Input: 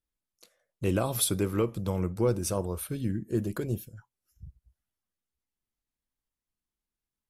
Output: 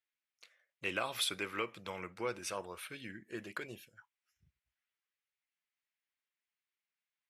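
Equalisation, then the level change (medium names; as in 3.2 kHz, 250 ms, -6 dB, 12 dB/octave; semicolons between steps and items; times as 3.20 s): band-pass filter 2.2 kHz, Q 1.9; +7.0 dB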